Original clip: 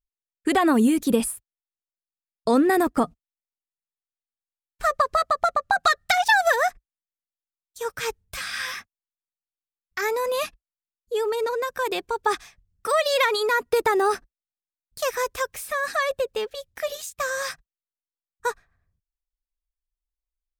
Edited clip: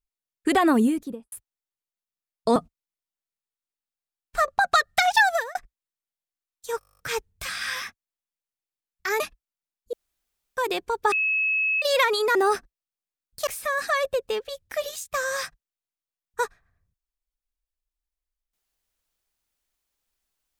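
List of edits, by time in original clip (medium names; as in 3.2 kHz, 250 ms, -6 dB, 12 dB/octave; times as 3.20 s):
0.65–1.32 s: studio fade out
2.56–3.02 s: delete
4.94–5.60 s: delete
6.34–6.67 s: fade out
7.91 s: stutter 0.02 s, 11 plays
10.12–10.41 s: delete
11.14–11.78 s: room tone
12.33–13.03 s: bleep 2.58 kHz -20.5 dBFS
13.56–13.94 s: delete
15.06–15.53 s: delete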